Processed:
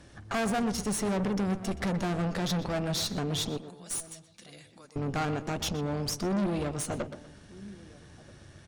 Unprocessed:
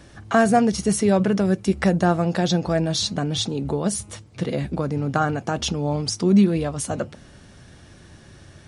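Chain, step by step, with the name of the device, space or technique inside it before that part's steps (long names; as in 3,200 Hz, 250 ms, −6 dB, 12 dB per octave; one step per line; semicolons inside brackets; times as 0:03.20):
0:03.57–0:04.96: first difference
slap from a distant wall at 220 metres, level −24 dB
rockabilly slapback (tube saturation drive 25 dB, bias 0.75; tape delay 123 ms, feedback 32%, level −10 dB, low-pass 2,500 Hz)
level −1.5 dB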